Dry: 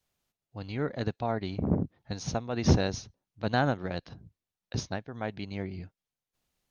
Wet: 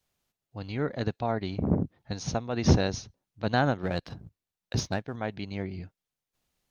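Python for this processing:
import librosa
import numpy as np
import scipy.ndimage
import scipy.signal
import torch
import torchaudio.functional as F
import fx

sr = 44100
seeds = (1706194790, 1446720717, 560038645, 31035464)

y = fx.leveller(x, sr, passes=1, at=(3.83, 5.16))
y = F.gain(torch.from_numpy(y), 1.5).numpy()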